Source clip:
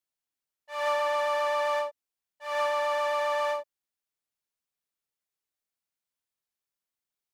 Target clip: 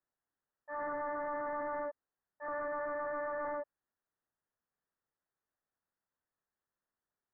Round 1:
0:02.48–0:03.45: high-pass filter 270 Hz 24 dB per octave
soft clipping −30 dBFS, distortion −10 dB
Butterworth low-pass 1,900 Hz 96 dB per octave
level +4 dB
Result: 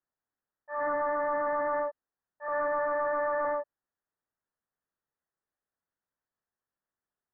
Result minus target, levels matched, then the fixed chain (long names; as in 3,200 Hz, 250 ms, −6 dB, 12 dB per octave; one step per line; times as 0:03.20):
soft clipping: distortion −5 dB
0:02.48–0:03.45: high-pass filter 270 Hz 24 dB per octave
soft clipping −40 dBFS, distortion −5 dB
Butterworth low-pass 1,900 Hz 96 dB per octave
level +4 dB